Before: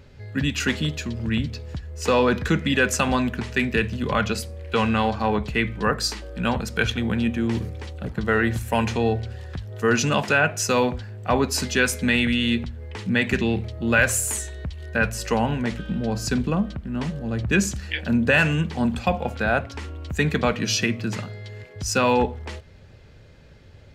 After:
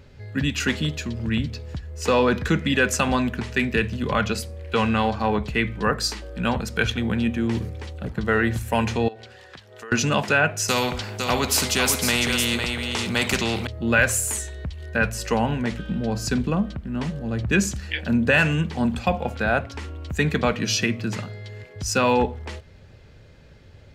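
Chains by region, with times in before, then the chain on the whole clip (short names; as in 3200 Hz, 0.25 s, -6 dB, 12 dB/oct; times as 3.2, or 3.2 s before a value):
9.08–9.92 weighting filter A + compressor 8:1, threshold -35 dBFS
10.68–13.67 bell 1700 Hz -11.5 dB 0.22 oct + echo 0.505 s -10 dB + spectral compressor 2:1
whole clip: dry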